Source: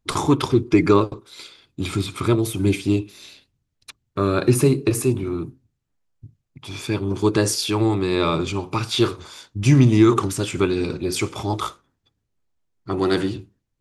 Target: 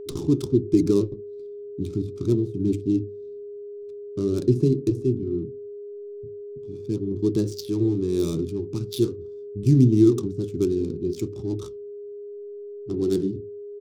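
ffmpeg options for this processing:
-af "adynamicsmooth=sensitivity=2:basefreq=590,firequalizer=gain_entry='entry(380,0);entry(570,-17);entry(840,-23);entry(2000,-23);entry(3800,-6);entry(5500,1)':delay=0.05:min_phase=1,flanger=delay=2.3:depth=3.5:regen=85:speed=1.4:shape=triangular,bandreject=f=50:t=h:w=6,bandreject=f=100:t=h:w=6,aeval=exprs='val(0)+0.0141*sin(2*PI*410*n/s)':c=same,volume=2.5dB"

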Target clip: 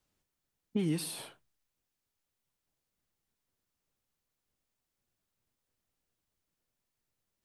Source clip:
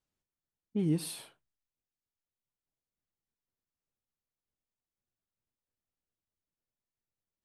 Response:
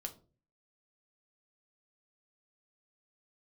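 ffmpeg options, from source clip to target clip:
-filter_complex "[0:a]acrossover=split=250|1100[a][b][c];[a]acompressor=threshold=-44dB:ratio=4[d];[b]acompressor=threshold=-43dB:ratio=4[e];[c]acompressor=threshold=-47dB:ratio=4[f];[d][e][f]amix=inputs=3:normalize=0,volume=8dB"

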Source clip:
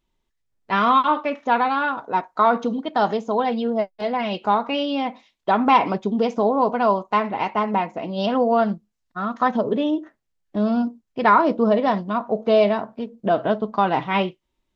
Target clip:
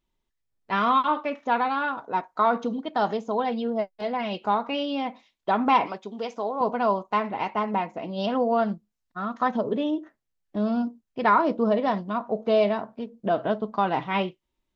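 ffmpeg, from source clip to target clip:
-filter_complex "[0:a]asettb=1/sr,asplit=3[a][b][c];[a]atrim=end=5.864[d];[b]atrim=start=5.86:end=6.61,asetpts=PTS-STARTPTS,afade=t=in:d=0.004:c=qsin,afade=t=out:st=0.746:d=0.004:c=qsin,highpass=f=800:p=1[e];[c]atrim=start=6.606[f];[d][e]acrossfade=d=0.004:c1=hsin:c2=qsin[g];[g][f]acrossfade=d=0.004:c1=qsin:c2=hsin,volume=-4.5dB"

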